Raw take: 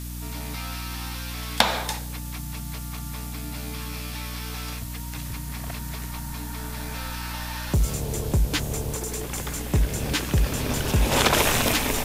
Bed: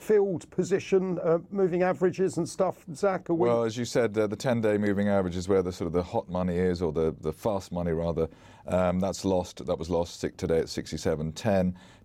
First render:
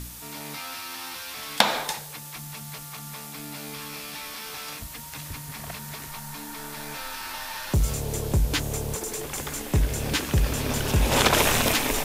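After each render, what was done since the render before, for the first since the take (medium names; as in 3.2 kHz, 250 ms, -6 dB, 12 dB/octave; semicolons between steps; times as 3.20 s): de-hum 60 Hz, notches 6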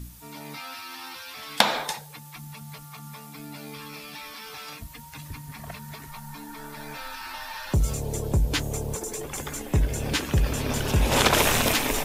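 noise reduction 10 dB, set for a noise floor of -40 dBFS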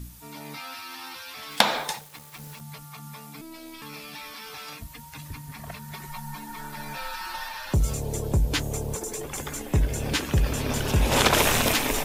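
1.51–2.61 s: small samples zeroed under -41.5 dBFS; 3.41–3.82 s: robot voice 325 Hz; 5.93–7.49 s: comb 5.5 ms, depth 77%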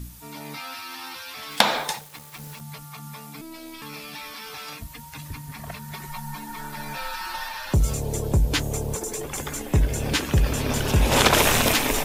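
trim +2.5 dB; peak limiter -1 dBFS, peak gain reduction 1.5 dB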